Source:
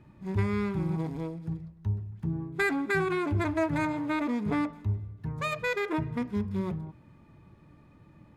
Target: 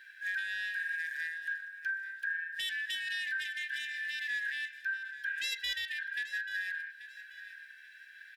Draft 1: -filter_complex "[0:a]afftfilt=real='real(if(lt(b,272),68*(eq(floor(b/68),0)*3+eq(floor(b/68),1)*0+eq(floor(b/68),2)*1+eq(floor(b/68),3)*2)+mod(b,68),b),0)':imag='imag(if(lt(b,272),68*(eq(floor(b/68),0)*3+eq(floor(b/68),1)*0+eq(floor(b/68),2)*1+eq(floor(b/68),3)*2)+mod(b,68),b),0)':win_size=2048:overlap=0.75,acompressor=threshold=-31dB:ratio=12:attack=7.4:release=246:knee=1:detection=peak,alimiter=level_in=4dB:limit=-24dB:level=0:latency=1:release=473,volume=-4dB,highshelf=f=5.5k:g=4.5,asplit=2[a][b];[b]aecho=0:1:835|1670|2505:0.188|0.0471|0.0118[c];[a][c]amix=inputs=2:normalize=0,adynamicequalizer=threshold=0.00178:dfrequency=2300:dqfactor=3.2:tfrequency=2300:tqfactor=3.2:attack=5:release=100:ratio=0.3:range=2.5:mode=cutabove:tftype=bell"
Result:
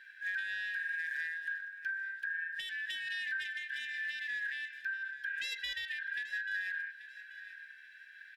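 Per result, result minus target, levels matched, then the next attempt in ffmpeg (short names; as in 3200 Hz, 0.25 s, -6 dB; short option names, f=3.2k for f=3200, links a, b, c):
compressor: peak gain reduction +10.5 dB; 8000 Hz band -5.5 dB
-filter_complex "[0:a]afftfilt=real='real(if(lt(b,272),68*(eq(floor(b/68),0)*3+eq(floor(b/68),1)*0+eq(floor(b/68),2)*1+eq(floor(b/68),3)*2)+mod(b,68),b),0)':imag='imag(if(lt(b,272),68*(eq(floor(b/68),0)*3+eq(floor(b/68),1)*0+eq(floor(b/68),2)*1+eq(floor(b/68),3)*2)+mod(b,68),b),0)':win_size=2048:overlap=0.75,alimiter=level_in=4dB:limit=-24dB:level=0:latency=1:release=473,volume=-4dB,highshelf=f=5.5k:g=4.5,asplit=2[a][b];[b]aecho=0:1:835|1670|2505:0.188|0.0471|0.0118[c];[a][c]amix=inputs=2:normalize=0,adynamicequalizer=threshold=0.00178:dfrequency=2300:dqfactor=3.2:tfrequency=2300:tqfactor=3.2:attack=5:release=100:ratio=0.3:range=2.5:mode=cutabove:tftype=bell"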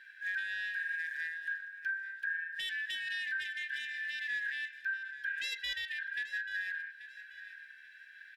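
8000 Hz band -5.0 dB
-filter_complex "[0:a]afftfilt=real='real(if(lt(b,272),68*(eq(floor(b/68),0)*3+eq(floor(b/68),1)*0+eq(floor(b/68),2)*1+eq(floor(b/68),3)*2)+mod(b,68),b),0)':imag='imag(if(lt(b,272),68*(eq(floor(b/68),0)*3+eq(floor(b/68),1)*0+eq(floor(b/68),2)*1+eq(floor(b/68),3)*2)+mod(b,68),b),0)':win_size=2048:overlap=0.75,alimiter=level_in=4dB:limit=-24dB:level=0:latency=1:release=473,volume=-4dB,highshelf=f=5.5k:g=14,asplit=2[a][b];[b]aecho=0:1:835|1670|2505:0.188|0.0471|0.0118[c];[a][c]amix=inputs=2:normalize=0,adynamicequalizer=threshold=0.00178:dfrequency=2300:dqfactor=3.2:tfrequency=2300:tqfactor=3.2:attack=5:release=100:ratio=0.3:range=2.5:mode=cutabove:tftype=bell"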